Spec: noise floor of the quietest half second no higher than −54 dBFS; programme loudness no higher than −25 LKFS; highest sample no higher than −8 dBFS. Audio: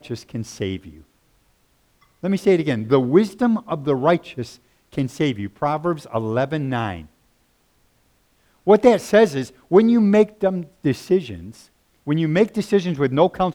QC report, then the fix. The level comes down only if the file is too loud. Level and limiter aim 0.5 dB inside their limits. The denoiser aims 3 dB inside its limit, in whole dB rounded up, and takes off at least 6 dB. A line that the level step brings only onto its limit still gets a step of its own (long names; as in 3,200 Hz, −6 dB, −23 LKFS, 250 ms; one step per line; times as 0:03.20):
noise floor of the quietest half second −62 dBFS: in spec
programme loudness −19.5 LKFS: out of spec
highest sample −2.0 dBFS: out of spec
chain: level −6 dB
brickwall limiter −8.5 dBFS